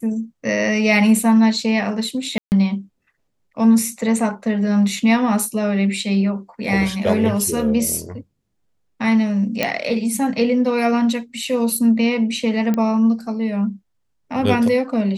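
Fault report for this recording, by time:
2.38–2.52 s: dropout 139 ms
9.63 s: pop -4 dBFS
12.74 s: pop -10 dBFS

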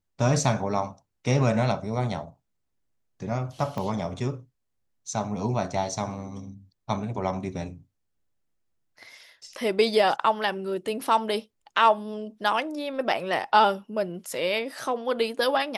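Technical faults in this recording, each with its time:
3.78 s: pop -19 dBFS

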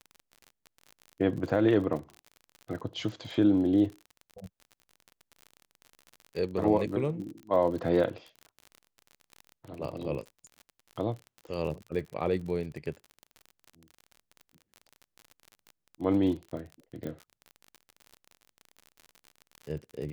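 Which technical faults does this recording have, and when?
crackle 42 per s -37 dBFS
17.07 s: pop -26 dBFS

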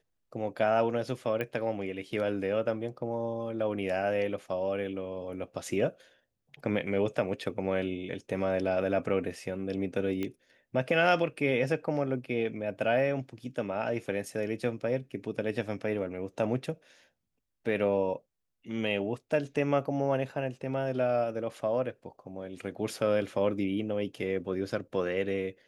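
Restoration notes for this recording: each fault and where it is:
1.41 s: pop -21 dBFS
10.23 s: pop -21 dBFS

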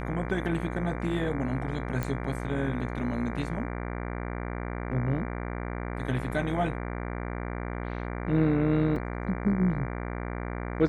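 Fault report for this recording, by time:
buzz 60 Hz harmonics 39 -34 dBFS
2.03 s: pop -17 dBFS
8.96 s: dropout 3 ms

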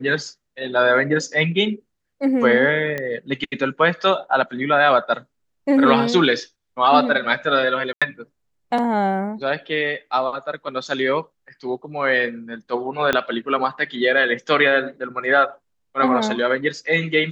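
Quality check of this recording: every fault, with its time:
2.98 s: pop -13 dBFS
7.93–8.02 s: dropout 86 ms
13.13 s: pop -5 dBFS

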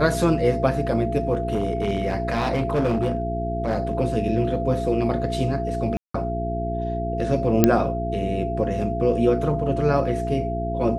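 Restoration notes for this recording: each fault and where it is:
hum 60 Hz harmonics 7 -28 dBFS
whine 680 Hz -27 dBFS
1.33–3.93 s: clipped -17 dBFS
5.97–6.14 s: dropout 174 ms
7.64 s: pop -1 dBFS

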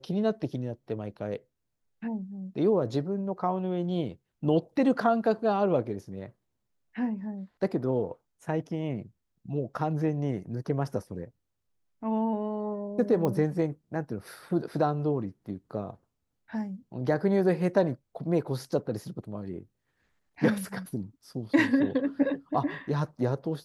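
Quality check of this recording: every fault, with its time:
13.25 s: pop -17 dBFS

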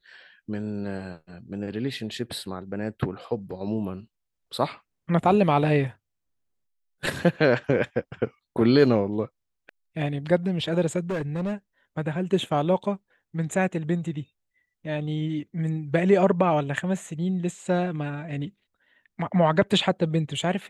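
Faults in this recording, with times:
11.10–11.54 s: clipped -24.5 dBFS

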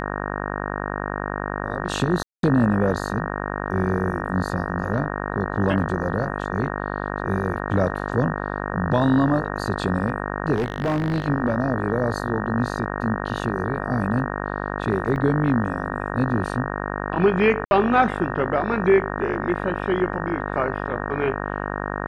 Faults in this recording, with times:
buzz 50 Hz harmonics 37 -28 dBFS
2.23–2.43 s: dropout 202 ms
10.55–11.26 s: clipped -18.5 dBFS
15.16 s: dropout 3.4 ms
17.65–17.71 s: dropout 61 ms

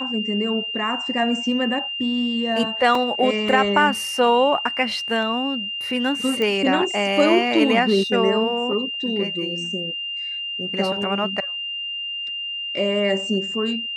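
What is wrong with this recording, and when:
whine 2.8 kHz -26 dBFS
2.95 s: dropout 3.2 ms
6.42 s: pop -12 dBFS

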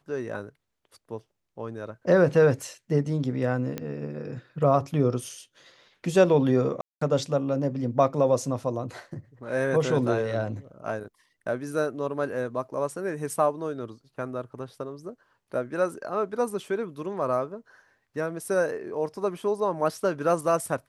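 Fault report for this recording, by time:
3.78 s: pop -17 dBFS
6.81–7.01 s: dropout 204 ms

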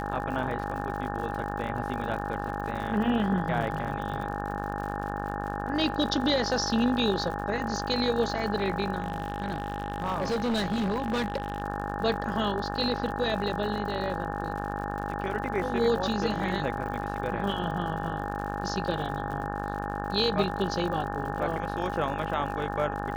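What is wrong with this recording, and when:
buzz 50 Hz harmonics 36 -34 dBFS
crackle 84 per s -36 dBFS
whine 820 Hz -35 dBFS
9.00–11.62 s: clipped -24 dBFS

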